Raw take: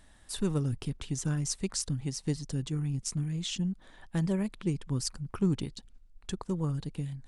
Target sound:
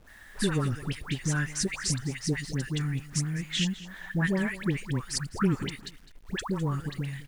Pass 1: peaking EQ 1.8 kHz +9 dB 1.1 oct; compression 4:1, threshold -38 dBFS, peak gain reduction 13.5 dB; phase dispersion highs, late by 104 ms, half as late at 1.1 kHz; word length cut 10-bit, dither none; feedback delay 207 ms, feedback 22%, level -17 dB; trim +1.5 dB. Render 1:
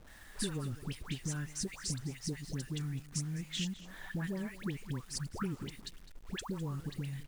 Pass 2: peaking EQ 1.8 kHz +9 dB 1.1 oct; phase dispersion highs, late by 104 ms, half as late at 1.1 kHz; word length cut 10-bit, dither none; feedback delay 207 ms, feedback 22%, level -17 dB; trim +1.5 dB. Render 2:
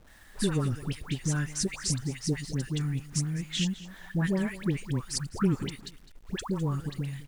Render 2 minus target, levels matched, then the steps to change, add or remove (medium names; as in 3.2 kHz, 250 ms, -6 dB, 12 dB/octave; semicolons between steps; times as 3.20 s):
2 kHz band -5.0 dB
change: peaking EQ 1.8 kHz +16 dB 1.1 oct